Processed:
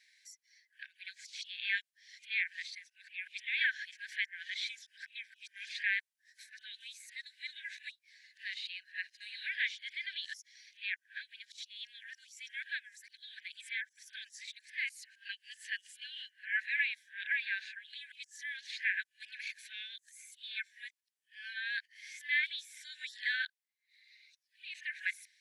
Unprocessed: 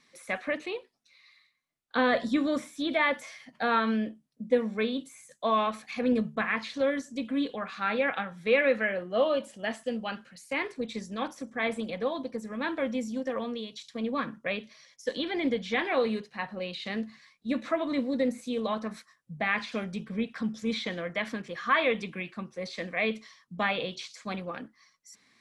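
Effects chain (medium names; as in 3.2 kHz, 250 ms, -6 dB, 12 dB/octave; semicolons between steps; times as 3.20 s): reverse the whole clip; brick-wall FIR high-pass 1.5 kHz; random flutter of the level, depth 50%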